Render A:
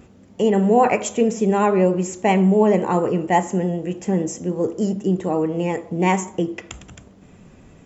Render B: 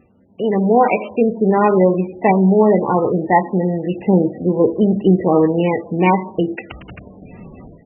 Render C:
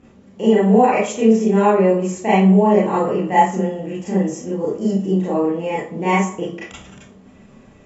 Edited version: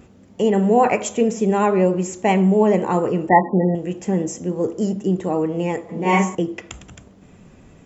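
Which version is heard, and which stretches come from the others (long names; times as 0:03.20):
A
0:03.29–0:03.75: punch in from B
0:05.89–0:06.35: punch in from C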